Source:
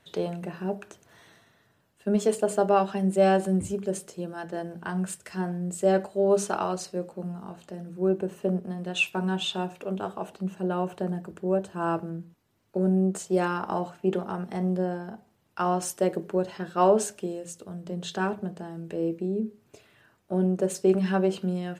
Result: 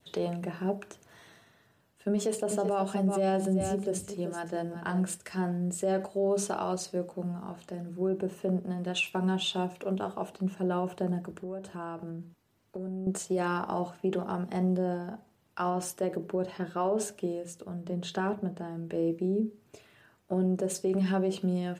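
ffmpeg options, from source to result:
-filter_complex "[0:a]asettb=1/sr,asplit=3[a][b][c];[a]atrim=end=2.134[d];[b]atrim=start=2.13:end=5.18,asetpts=PTS-STARTPTS,afade=t=in:d=0.004:c=qsin,afade=t=out:st=3.046:d=0.004:c=qsin,aecho=1:1:382:0.266,atrim=end_sample=134505[e];[c]atrim=start=5.176[f];[d][e]acrossfade=d=0.004:c1=hsin:c2=qsin[g];[g][f]acrossfade=d=0.004:c1=qsin:c2=hsin,asettb=1/sr,asplit=3[h][i][j];[h]atrim=end=11.424[k];[i]atrim=start=11.42:end=13.07,asetpts=PTS-STARTPTS,afade=t=in:d=0.004:c=qsin,afade=t=out:st=1.646:d=0.004:c=qsin,acompressor=threshold=-35dB:ratio=5:attack=3.2:release=140:knee=1:detection=peak[l];[j]atrim=start=13.066[m];[k][l]acrossfade=d=0.004:c1=hsin:c2=qsin[n];[n][m]acrossfade=d=0.004:c1=qsin:c2=hsin,asettb=1/sr,asplit=3[o][p][q];[o]atrim=end=15.704[r];[p]atrim=start=15.7:end=18.94,asetpts=PTS-STARTPTS,afade=t=in:d=0.004:c=qsin,afade=t=out:st=3.236:d=0.004:c=qsin,equalizer=f=7.4k:t=o:w=2.2:g=-5[s];[q]atrim=start=18.936[t];[r][s]acrossfade=d=0.004:c1=hsin:c2=qsin[u];[u][t]acrossfade=d=0.004:c1=qsin:c2=hsin,adynamicequalizer=threshold=0.00631:dfrequency=1600:dqfactor=1:tfrequency=1600:tqfactor=1:attack=5:release=100:ratio=0.375:range=2.5:mode=cutabove:tftype=bell,alimiter=limit=-20.5dB:level=0:latency=1:release=52"

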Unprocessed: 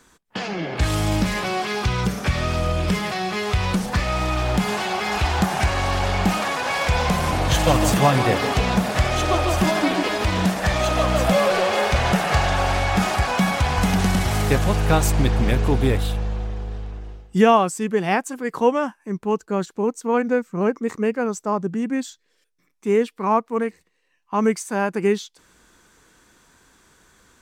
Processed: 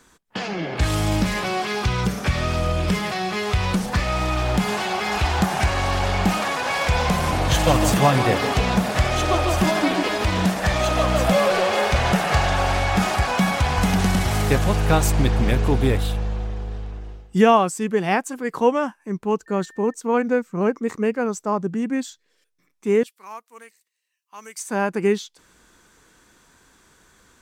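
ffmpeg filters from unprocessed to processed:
-filter_complex "[0:a]asettb=1/sr,asplit=3[a][b][c];[a]atrim=end=19.464[d];[b]atrim=start=19.46:end=19.94,asetpts=PTS-STARTPTS,afade=t=in:d=0.004:c=qsin,afade=t=out:st=0.476:d=0.004:c=qsin,aeval=exprs='val(0)+0.00501*sin(2*PI*1800*n/s)':c=same[e];[c]atrim=start=19.936[f];[d][e]acrossfade=d=0.004:c1=hsin:c2=qsin[g];[g][f]acrossfade=d=0.004:c1=qsin:c2=hsin,asettb=1/sr,asplit=3[h][i][j];[h]atrim=end=23.034[k];[i]atrim=start=23.03:end=24.59,asetpts=PTS-STARTPTS,afade=t=in:d=0.004:c=qsin,afade=t=out:st=1.556:d=0.004:c=qsin,aderivative[l];[j]atrim=start=24.586[m];[k][l]acrossfade=d=0.004:c1=hsin:c2=qsin[n];[n][m]acrossfade=d=0.004:c1=qsin:c2=hsin"

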